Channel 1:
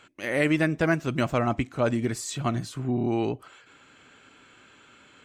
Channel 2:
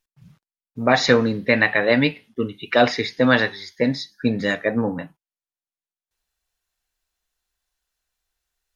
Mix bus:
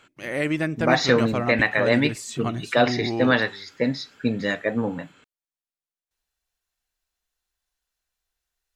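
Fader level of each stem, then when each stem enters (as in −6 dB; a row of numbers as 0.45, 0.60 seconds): −1.5, −3.0 decibels; 0.00, 0.00 seconds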